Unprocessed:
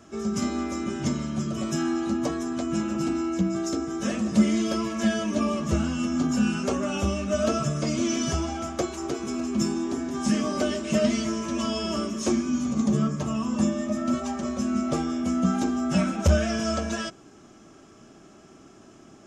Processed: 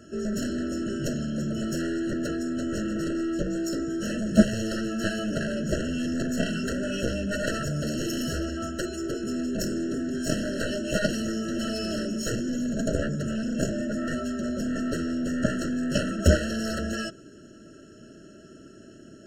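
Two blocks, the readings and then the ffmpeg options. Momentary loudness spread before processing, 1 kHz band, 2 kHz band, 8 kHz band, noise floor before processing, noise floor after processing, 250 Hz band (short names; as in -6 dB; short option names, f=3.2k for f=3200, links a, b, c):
6 LU, -7.5 dB, +2.0 dB, -2.5 dB, -51 dBFS, -49 dBFS, -2.5 dB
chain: -af "acontrast=33,aeval=exprs='0.562*(cos(1*acos(clip(val(0)/0.562,-1,1)))-cos(1*PI/2))+0.2*(cos(3*acos(clip(val(0)/0.562,-1,1)))-cos(3*PI/2))+0.02*(cos(6*acos(clip(val(0)/0.562,-1,1)))-cos(6*PI/2))+0.0562*(cos(7*acos(clip(val(0)/0.562,-1,1)))-cos(7*PI/2))+0.00398*(cos(8*acos(clip(val(0)/0.562,-1,1)))-cos(8*PI/2))':c=same,afftfilt=real='re*eq(mod(floor(b*sr/1024/650),2),0)':imag='im*eq(mod(floor(b*sr/1024/650),2),0)':win_size=1024:overlap=0.75"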